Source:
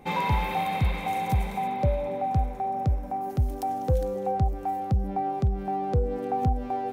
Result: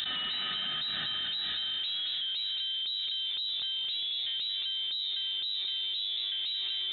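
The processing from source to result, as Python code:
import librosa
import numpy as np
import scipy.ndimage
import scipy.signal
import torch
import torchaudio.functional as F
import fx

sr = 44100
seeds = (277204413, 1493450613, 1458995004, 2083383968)

y = scipy.signal.sosfilt(scipy.signal.butter(2, 59.0, 'highpass', fs=sr, output='sos'), x)
y = 10.0 ** (-19.0 / 20.0) * (np.abs((y / 10.0 ** (-19.0 / 20.0) + 3.0) % 4.0 - 2.0) - 1.0)
y = fx.comb_fb(y, sr, f0_hz=220.0, decay_s=0.34, harmonics='all', damping=0.0, mix_pct=70)
y = 10.0 ** (-33.0 / 20.0) * np.tanh(y / 10.0 ** (-33.0 / 20.0))
y = y + 10.0 ** (-8.0 / 20.0) * np.pad(y, (int(225 * sr / 1000.0), 0))[:len(y)]
y = fx.freq_invert(y, sr, carrier_hz=3900)
y = fx.env_flatten(y, sr, amount_pct=100)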